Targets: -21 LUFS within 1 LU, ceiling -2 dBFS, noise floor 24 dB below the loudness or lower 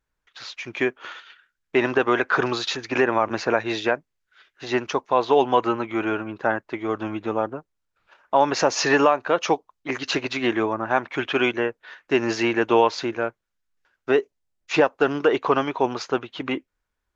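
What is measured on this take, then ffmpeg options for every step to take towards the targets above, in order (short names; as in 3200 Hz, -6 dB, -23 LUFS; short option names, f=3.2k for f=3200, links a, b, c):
loudness -23.0 LUFS; peak -4.5 dBFS; loudness target -21.0 LUFS
-> -af "volume=2dB"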